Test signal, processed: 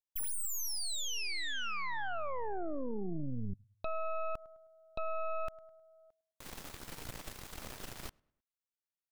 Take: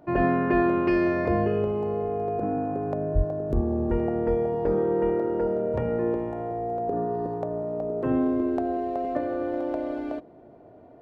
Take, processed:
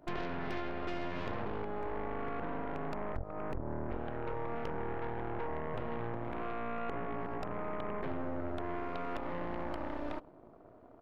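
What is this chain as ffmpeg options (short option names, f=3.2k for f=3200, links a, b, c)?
-filter_complex "[0:a]asplit=2[a][b];[b]adelay=104,lowpass=f=3.3k:p=1,volume=-23dB,asplit=2[c][d];[d]adelay=104,lowpass=f=3.3k:p=1,volume=0.47,asplit=2[e][f];[f]adelay=104,lowpass=f=3.3k:p=1,volume=0.47[g];[a][c][e][g]amix=inputs=4:normalize=0,acompressor=threshold=-31dB:ratio=8,aeval=exprs='0.0668*(cos(1*acos(clip(val(0)/0.0668,-1,1)))-cos(1*PI/2))+0.0237*(cos(2*acos(clip(val(0)/0.0668,-1,1)))-cos(2*PI/2))+0.0237*(cos(6*acos(clip(val(0)/0.0668,-1,1)))-cos(6*PI/2))':c=same,volume=-8dB"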